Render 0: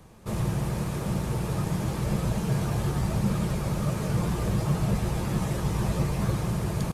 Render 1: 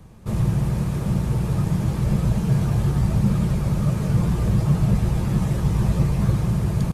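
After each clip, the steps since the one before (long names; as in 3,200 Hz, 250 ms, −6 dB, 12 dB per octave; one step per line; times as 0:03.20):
bass and treble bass +8 dB, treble −1 dB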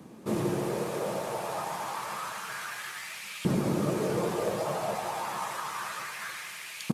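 auto-filter high-pass saw up 0.29 Hz 250–2,600 Hz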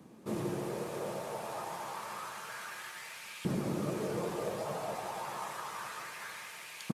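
repeating echo 570 ms, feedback 50%, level −14.5 dB
level −6.5 dB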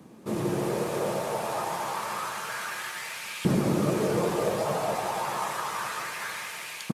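automatic gain control gain up to 4.5 dB
level +5 dB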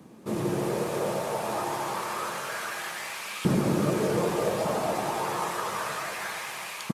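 single-tap delay 1,197 ms −12 dB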